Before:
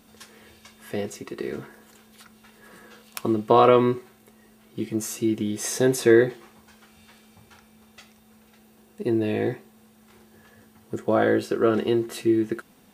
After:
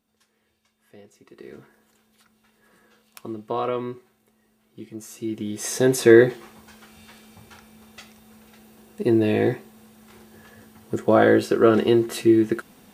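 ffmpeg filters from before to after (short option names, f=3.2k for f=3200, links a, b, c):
-af "volume=4.5dB,afade=t=in:st=1.12:d=0.4:silence=0.354813,afade=t=in:st=5.07:d=0.34:silence=0.473151,afade=t=in:st=5.41:d=0.83:silence=0.398107"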